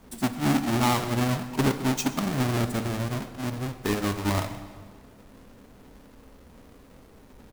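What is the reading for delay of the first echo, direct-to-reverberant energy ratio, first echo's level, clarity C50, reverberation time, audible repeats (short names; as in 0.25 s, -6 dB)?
0.129 s, 9.5 dB, -20.0 dB, 11.0 dB, 1.7 s, 1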